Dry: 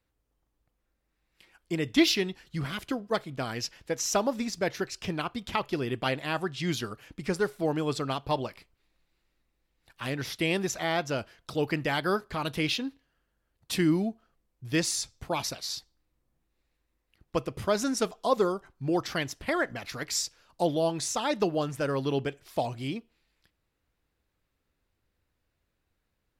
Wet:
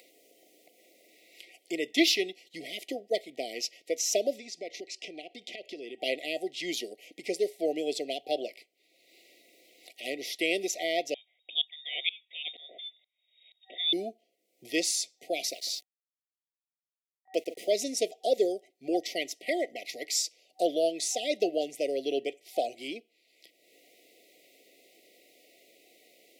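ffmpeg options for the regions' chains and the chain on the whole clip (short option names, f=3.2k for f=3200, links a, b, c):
-filter_complex "[0:a]asettb=1/sr,asplit=3[a][b][c];[a]atrim=end=4.384[d];[b]atrim=start=4.38:end=6,asetpts=PTS-STARTPTS,afade=t=in:d=0.004:c=qsin,afade=t=out:st=1.616:d=0.004:c=qsin,lowpass=7.3k,acompressor=threshold=-36dB:ratio=4:attack=3.2:release=140:knee=1:detection=peak[e];[c]atrim=start=5.996[f];[d][e]acrossfade=d=0.004:c1=hsin:c2=qsin[g];[g][f]acrossfade=d=0.004:c1=qsin:c2=hsin,asettb=1/sr,asplit=3[h][i][j];[h]atrim=end=11.144[k];[i]atrim=start=11.14:end=13.93,asetpts=PTS-STARTPTS,afade=t=in:d=0.004:c=qsin,afade=t=out:st=2.786:d=0.004:c=qsin,lowpass=f=3.2k:t=q:w=0.5098,lowpass=f=3.2k:t=q:w=0.6013,lowpass=f=3.2k:t=q:w=0.9,lowpass=f=3.2k:t=q:w=2.563,afreqshift=-3800,aeval=exprs='val(0)*pow(10,-25*if(lt(mod(-2.1*n/s,1),2*abs(-2.1)/1000),1-mod(-2.1*n/s,1)/(2*abs(-2.1)/1000),(mod(-2.1*n/s,1)-2*abs(-2.1)/1000)/(1-2*abs(-2.1)/1000))/20)':c=same[l];[j]atrim=start=13.926[m];[k][l]acrossfade=d=0.004:c1=hsin:c2=qsin[n];[n][m]acrossfade=d=0.004:c1=qsin:c2=hsin,asettb=1/sr,asplit=3[o][p][q];[o]atrim=end=15.514[r];[p]atrim=start=15.51:end=17.72,asetpts=PTS-STARTPTS,afade=t=in:d=0.004:c=qsin,afade=t=out:st=2.206:d=0.004:c=qsin,highpass=160,asplit=2[s][t];[t]adelay=150,lowpass=f=1.5k:p=1,volume=-17dB,asplit=2[u][v];[v]adelay=150,lowpass=f=1.5k:p=1,volume=0.43,asplit=2[w][x];[x]adelay=150,lowpass=f=1.5k:p=1,volume=0.43,asplit=2[y][z];[z]adelay=150,lowpass=f=1.5k:p=1,volume=0.43[aa];[s][u][w][y][aa]amix=inputs=5:normalize=0,atrim=end_sample=97461,aeval=exprs='val(0)*gte(abs(val(0)),0.00376)':c=same[ab];[q]atrim=start=17.716[ac];[r][ab]acrossfade=d=0.004:c1=hsin:c2=qsin[ad];[ad][ac]acrossfade=d=0.004:c1=qsin:c2=hsin,highpass=f=340:w=0.5412,highpass=f=340:w=1.3066,afftfilt=real='re*(1-between(b*sr/4096,760,1900))':imag='im*(1-between(b*sr/4096,760,1900))':win_size=4096:overlap=0.75,acompressor=mode=upward:threshold=-42dB:ratio=2.5,volume=1dB"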